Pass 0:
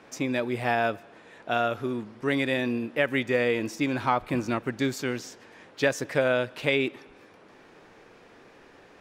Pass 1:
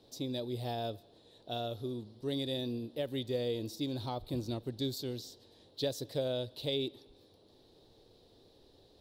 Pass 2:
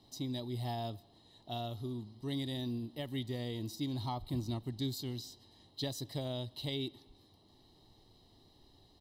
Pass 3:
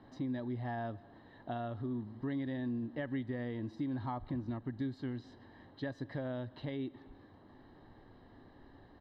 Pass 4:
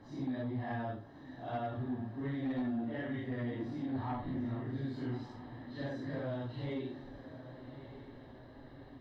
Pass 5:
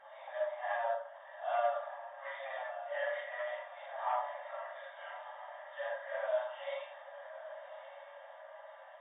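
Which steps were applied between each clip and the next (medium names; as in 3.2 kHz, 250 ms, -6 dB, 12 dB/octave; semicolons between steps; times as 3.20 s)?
FFT filter 100 Hz 0 dB, 180 Hz -11 dB, 390 Hz -8 dB, 570 Hz -10 dB, 840 Hz -15 dB, 1.4 kHz -27 dB, 2.4 kHz -25 dB, 3.9 kHz +4 dB, 6.4 kHz -12 dB, 13 kHz 0 dB
comb 1 ms, depth 72%; trim -2 dB
compression 4:1, threshold -44 dBFS, peak gain reduction 10.5 dB; resonant low-pass 1.6 kHz, resonance Q 8.4; small resonant body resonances 260/530 Hz, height 6 dB, ringing for 30 ms; trim +4.5 dB
phase randomisation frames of 200 ms; sine folder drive 4 dB, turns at -25 dBFS; echo that smears into a reverb 1197 ms, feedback 51%, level -12 dB; trim -6 dB
flange 0.82 Hz, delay 2.8 ms, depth 9.9 ms, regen -73%; brick-wall FIR band-pass 530–3700 Hz; reverberation RT60 0.60 s, pre-delay 3 ms, DRR -0.5 dB; trim +8.5 dB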